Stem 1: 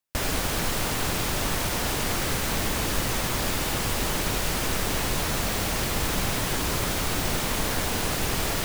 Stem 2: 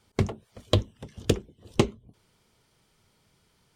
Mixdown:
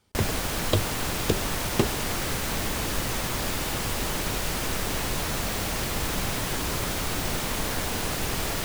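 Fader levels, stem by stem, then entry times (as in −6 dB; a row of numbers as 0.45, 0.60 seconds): −2.0, −2.0 decibels; 0.00, 0.00 seconds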